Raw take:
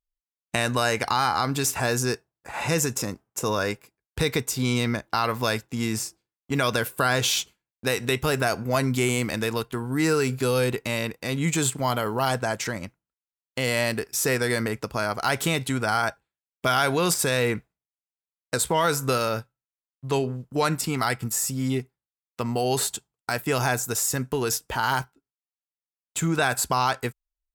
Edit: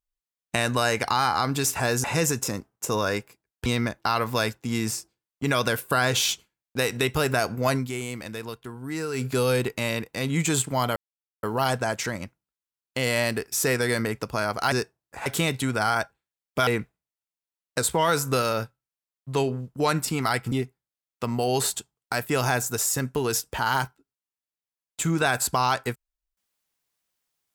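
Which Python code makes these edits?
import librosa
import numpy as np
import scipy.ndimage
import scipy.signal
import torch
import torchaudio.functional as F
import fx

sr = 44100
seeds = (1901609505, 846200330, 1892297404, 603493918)

y = fx.edit(x, sr, fx.move(start_s=2.04, length_s=0.54, to_s=15.33),
    fx.cut(start_s=4.2, length_s=0.54),
    fx.fade_down_up(start_s=8.82, length_s=1.51, db=-8.5, fade_s=0.13),
    fx.insert_silence(at_s=12.04, length_s=0.47),
    fx.cut(start_s=16.74, length_s=0.69),
    fx.cut(start_s=21.28, length_s=0.41), tone=tone)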